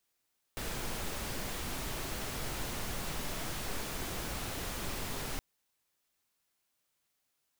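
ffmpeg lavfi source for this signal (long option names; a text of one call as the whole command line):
ffmpeg -f lavfi -i "anoisesrc=color=pink:amplitude=0.0684:duration=4.82:sample_rate=44100:seed=1" out.wav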